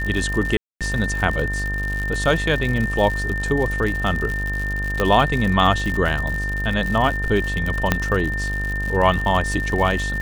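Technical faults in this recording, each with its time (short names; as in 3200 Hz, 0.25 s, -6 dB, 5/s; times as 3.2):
buzz 50 Hz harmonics 31 -26 dBFS
crackle 97/s -24 dBFS
tone 1800 Hz -25 dBFS
0.57–0.81 gap 0.237 s
5 pop -7 dBFS
7.92 pop -2 dBFS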